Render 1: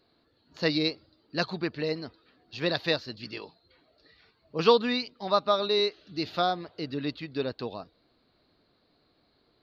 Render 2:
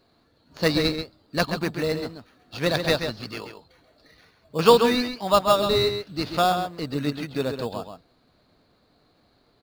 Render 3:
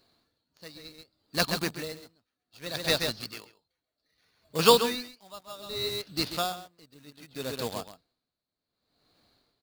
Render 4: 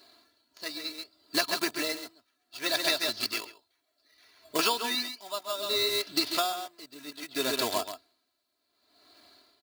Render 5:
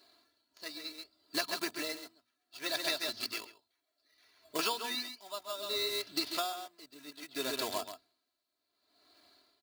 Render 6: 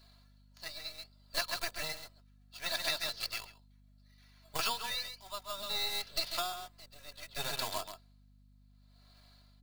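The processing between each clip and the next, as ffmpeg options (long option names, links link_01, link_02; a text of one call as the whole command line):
ffmpeg -i in.wav -filter_complex "[0:a]equalizer=frequency=360:width=2.2:gain=-5,asplit=2[link_01][link_02];[link_02]acrusher=samples=11:mix=1:aa=0.000001,volume=-4dB[link_03];[link_01][link_03]amix=inputs=2:normalize=0,asplit=2[link_04][link_05];[link_05]adelay=134.1,volume=-7dB,highshelf=frequency=4000:gain=-3.02[link_06];[link_04][link_06]amix=inputs=2:normalize=0,volume=2.5dB" out.wav
ffmpeg -i in.wav -filter_complex "[0:a]asplit=2[link_01][link_02];[link_02]acrusher=bits=4:mix=0:aa=0.000001,volume=-8.5dB[link_03];[link_01][link_03]amix=inputs=2:normalize=0,highshelf=frequency=2800:gain=11,aeval=exprs='val(0)*pow(10,-24*(0.5-0.5*cos(2*PI*0.65*n/s))/20)':channel_layout=same,volume=-7dB" out.wav
ffmpeg -i in.wav -af "highpass=frequency=460:poles=1,aecho=1:1:3:0.81,acompressor=threshold=-32dB:ratio=12,volume=8.5dB" out.wav
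ffmpeg -i in.wav -af "bandreject=frequency=60:width_type=h:width=6,bandreject=frequency=120:width_type=h:width=6,bandreject=frequency=180:width_type=h:width=6,bandreject=frequency=240:width_type=h:width=6,volume=-6.5dB" out.wav
ffmpeg -i in.wav -filter_complex "[0:a]acrossover=split=530[link_01][link_02];[link_01]aeval=exprs='abs(val(0))':channel_layout=same[link_03];[link_03][link_02]amix=inputs=2:normalize=0,aeval=exprs='val(0)+0.000891*(sin(2*PI*50*n/s)+sin(2*PI*2*50*n/s)/2+sin(2*PI*3*50*n/s)/3+sin(2*PI*4*50*n/s)/4+sin(2*PI*5*50*n/s)/5)':channel_layout=same" out.wav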